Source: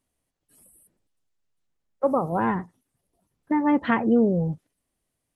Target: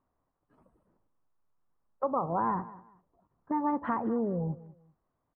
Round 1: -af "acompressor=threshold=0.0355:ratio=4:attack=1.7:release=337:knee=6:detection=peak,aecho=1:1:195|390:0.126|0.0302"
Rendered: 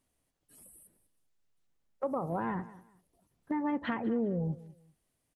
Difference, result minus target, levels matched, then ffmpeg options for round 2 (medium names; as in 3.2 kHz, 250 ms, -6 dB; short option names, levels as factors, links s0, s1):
1 kHz band -5.0 dB
-af "acompressor=threshold=0.0355:ratio=4:attack=1.7:release=337:knee=6:detection=peak,lowpass=f=1100:t=q:w=3,aecho=1:1:195|390:0.126|0.0302"